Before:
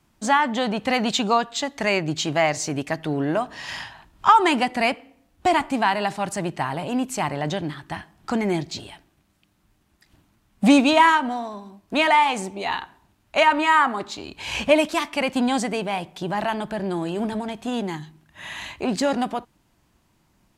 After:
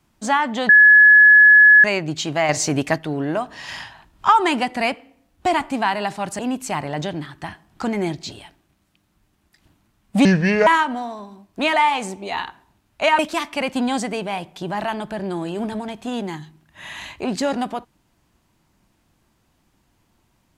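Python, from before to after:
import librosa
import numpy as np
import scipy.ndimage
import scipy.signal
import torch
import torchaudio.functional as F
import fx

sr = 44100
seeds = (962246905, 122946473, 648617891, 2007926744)

y = fx.edit(x, sr, fx.bleep(start_s=0.69, length_s=1.15, hz=1700.0, db=-6.0),
    fx.clip_gain(start_s=2.49, length_s=0.49, db=6.0),
    fx.cut(start_s=6.39, length_s=0.48),
    fx.speed_span(start_s=10.73, length_s=0.28, speed=0.67),
    fx.cut(start_s=13.53, length_s=1.26), tone=tone)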